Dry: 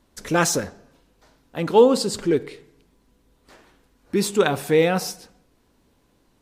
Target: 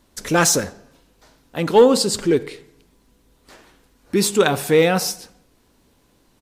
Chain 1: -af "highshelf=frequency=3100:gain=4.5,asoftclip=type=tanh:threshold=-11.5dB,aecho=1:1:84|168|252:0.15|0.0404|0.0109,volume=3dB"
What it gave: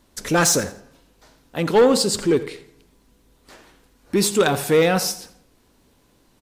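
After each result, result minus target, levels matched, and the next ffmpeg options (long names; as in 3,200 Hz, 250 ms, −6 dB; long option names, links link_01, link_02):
echo-to-direct +10 dB; soft clipping: distortion +10 dB
-af "highshelf=frequency=3100:gain=4.5,asoftclip=type=tanh:threshold=-11.5dB,aecho=1:1:84|168:0.0473|0.0128,volume=3dB"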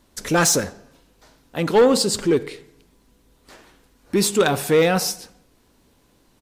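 soft clipping: distortion +10 dB
-af "highshelf=frequency=3100:gain=4.5,asoftclip=type=tanh:threshold=-4.5dB,aecho=1:1:84|168:0.0473|0.0128,volume=3dB"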